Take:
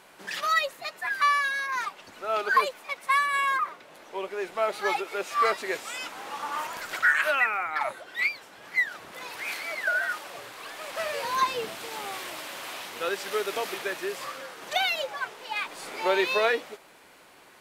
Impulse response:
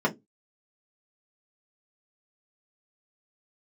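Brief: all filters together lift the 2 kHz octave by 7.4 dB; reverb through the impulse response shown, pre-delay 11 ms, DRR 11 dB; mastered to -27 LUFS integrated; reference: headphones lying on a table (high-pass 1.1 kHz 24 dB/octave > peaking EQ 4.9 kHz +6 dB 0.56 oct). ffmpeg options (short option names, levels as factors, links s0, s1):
-filter_complex "[0:a]equalizer=f=2000:t=o:g=9,asplit=2[s0][s1];[1:a]atrim=start_sample=2205,adelay=11[s2];[s1][s2]afir=irnorm=-1:irlink=0,volume=0.0668[s3];[s0][s3]amix=inputs=2:normalize=0,highpass=f=1100:w=0.5412,highpass=f=1100:w=1.3066,equalizer=f=4900:t=o:w=0.56:g=6,volume=0.596"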